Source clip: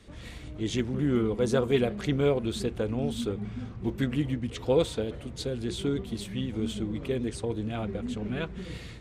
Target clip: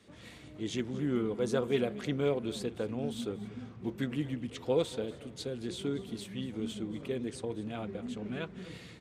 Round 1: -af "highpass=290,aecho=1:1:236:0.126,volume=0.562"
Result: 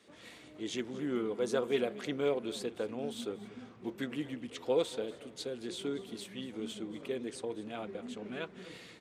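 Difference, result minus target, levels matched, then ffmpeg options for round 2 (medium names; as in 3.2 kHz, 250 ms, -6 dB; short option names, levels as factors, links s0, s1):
125 Hz band -8.5 dB
-af "highpass=130,aecho=1:1:236:0.126,volume=0.562"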